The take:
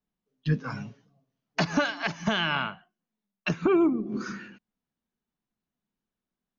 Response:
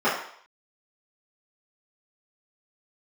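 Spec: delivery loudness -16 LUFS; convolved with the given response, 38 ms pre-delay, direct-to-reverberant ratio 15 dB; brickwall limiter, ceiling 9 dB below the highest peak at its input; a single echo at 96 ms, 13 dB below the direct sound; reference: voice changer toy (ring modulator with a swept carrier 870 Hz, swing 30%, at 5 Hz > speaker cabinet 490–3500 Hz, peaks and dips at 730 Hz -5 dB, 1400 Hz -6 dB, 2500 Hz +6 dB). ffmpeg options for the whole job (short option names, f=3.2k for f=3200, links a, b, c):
-filter_complex "[0:a]alimiter=limit=-20.5dB:level=0:latency=1,aecho=1:1:96:0.224,asplit=2[a][b];[1:a]atrim=start_sample=2205,adelay=38[c];[b][c]afir=irnorm=-1:irlink=0,volume=-33dB[d];[a][d]amix=inputs=2:normalize=0,aeval=exprs='val(0)*sin(2*PI*870*n/s+870*0.3/5*sin(2*PI*5*n/s))':c=same,highpass=490,equalizer=f=730:t=q:w=4:g=-5,equalizer=f=1.4k:t=q:w=4:g=-6,equalizer=f=2.5k:t=q:w=4:g=6,lowpass=f=3.5k:w=0.5412,lowpass=f=3.5k:w=1.3066,volume=20.5dB"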